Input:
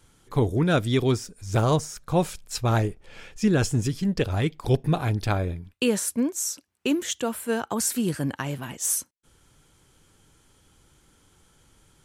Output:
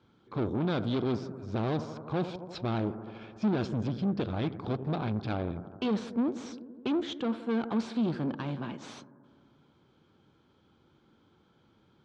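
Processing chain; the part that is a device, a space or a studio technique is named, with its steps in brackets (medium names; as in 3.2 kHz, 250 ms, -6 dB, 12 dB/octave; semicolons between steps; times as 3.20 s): analogue delay pedal into a guitar amplifier (bucket-brigade echo 84 ms, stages 1024, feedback 78%, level -18 dB; valve stage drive 28 dB, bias 0.6; cabinet simulation 110–3700 Hz, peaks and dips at 220 Hz +6 dB, 340 Hz +4 dB, 1.9 kHz -9 dB, 2.8 kHz -7 dB); dynamic bell 3.7 kHz, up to +4 dB, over -54 dBFS, Q 1.2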